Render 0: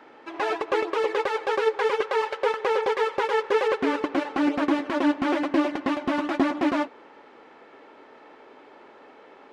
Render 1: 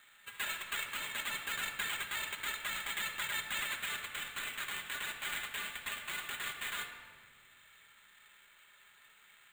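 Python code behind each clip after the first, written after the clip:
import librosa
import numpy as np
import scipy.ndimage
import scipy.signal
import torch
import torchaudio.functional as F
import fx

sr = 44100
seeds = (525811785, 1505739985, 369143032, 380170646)

y = scipy.signal.sosfilt(scipy.signal.cheby2(4, 70, 370.0, 'highpass', fs=sr, output='sos'), x)
y = fx.sample_hold(y, sr, seeds[0], rate_hz=5400.0, jitter_pct=0)
y = fx.room_shoebox(y, sr, seeds[1], volume_m3=2400.0, walls='mixed', distance_m=1.3)
y = y * 10.0 ** (-3.5 / 20.0)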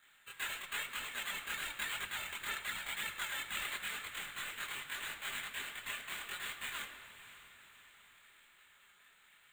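y = fx.hpss(x, sr, part='harmonic', gain_db=-9)
y = fx.chorus_voices(y, sr, voices=2, hz=0.98, base_ms=24, depth_ms=4.0, mix_pct=55)
y = fx.echo_diffused(y, sr, ms=566, feedback_pct=50, wet_db=-14.5)
y = y * 10.0 ** (3.5 / 20.0)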